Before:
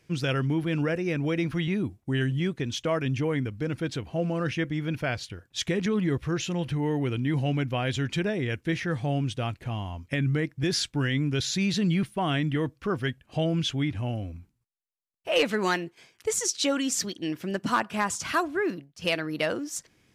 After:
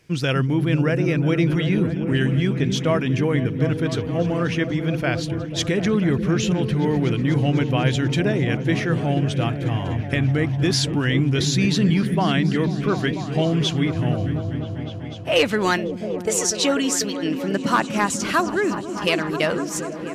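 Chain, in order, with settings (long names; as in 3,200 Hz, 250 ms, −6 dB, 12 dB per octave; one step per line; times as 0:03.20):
echo whose low-pass opens from repeat to repeat 246 ms, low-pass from 200 Hz, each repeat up 1 octave, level −3 dB
level +5.5 dB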